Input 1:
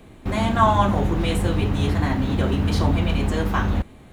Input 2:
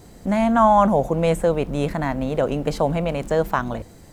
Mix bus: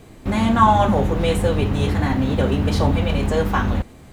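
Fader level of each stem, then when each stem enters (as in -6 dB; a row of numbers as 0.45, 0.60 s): +1.0, -4.5 dB; 0.00, 0.00 s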